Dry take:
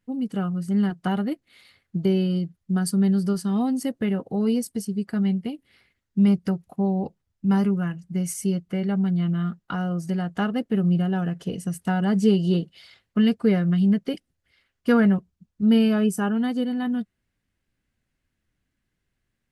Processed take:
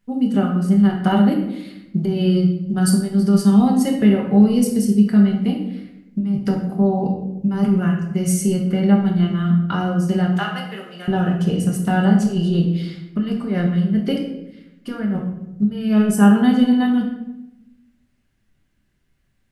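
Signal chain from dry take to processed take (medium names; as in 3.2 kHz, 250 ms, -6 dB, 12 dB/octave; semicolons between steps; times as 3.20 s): 10.35–11.08 s: high-pass 1 kHz 12 dB/octave; compressor with a negative ratio -22 dBFS, ratio -0.5; simulated room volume 300 m³, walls mixed, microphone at 1.2 m; trim +3 dB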